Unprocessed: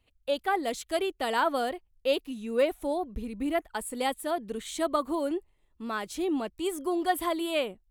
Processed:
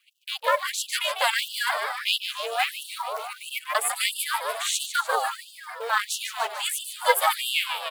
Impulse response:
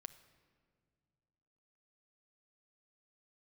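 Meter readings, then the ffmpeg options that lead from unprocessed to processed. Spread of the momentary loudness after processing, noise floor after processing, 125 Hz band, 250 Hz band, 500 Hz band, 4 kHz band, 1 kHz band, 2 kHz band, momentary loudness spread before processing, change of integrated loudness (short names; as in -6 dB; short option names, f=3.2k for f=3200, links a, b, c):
9 LU, -49 dBFS, n/a, under -35 dB, -3.0 dB, +11.5 dB, +5.0 dB, +10.0 dB, 7 LU, +4.5 dB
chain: -filter_complex "[0:a]acrossover=split=660[a][b];[a]alimiter=level_in=6.5dB:limit=-24dB:level=0:latency=1,volume=-6.5dB[c];[b]dynaudnorm=f=270:g=5:m=6dB[d];[c][d]amix=inputs=2:normalize=0,lowshelf=f=97:g=9.5,asplit=7[e][f][g][h][i][j][k];[f]adelay=148,afreqshift=140,volume=-9.5dB[l];[g]adelay=296,afreqshift=280,volume=-14.7dB[m];[h]adelay=444,afreqshift=420,volume=-19.9dB[n];[i]adelay=592,afreqshift=560,volume=-25.1dB[o];[j]adelay=740,afreqshift=700,volume=-30.3dB[p];[k]adelay=888,afreqshift=840,volume=-35.5dB[q];[e][l][m][n][o][p][q]amix=inputs=7:normalize=0,asplit=2[r][s];[s]acompressor=threshold=-39dB:ratio=12,volume=1.5dB[t];[r][t]amix=inputs=2:normalize=0,equalizer=f=330:w=0.69:g=-3.5,acrusher=bits=6:mode=log:mix=0:aa=0.000001,aeval=exprs='val(0)*sin(2*PI*230*n/s)':c=same,afftfilt=real='re*gte(b*sr/1024,400*pow(2700/400,0.5+0.5*sin(2*PI*1.5*pts/sr)))':imag='im*gte(b*sr/1024,400*pow(2700/400,0.5+0.5*sin(2*PI*1.5*pts/sr)))':win_size=1024:overlap=0.75,volume=7dB"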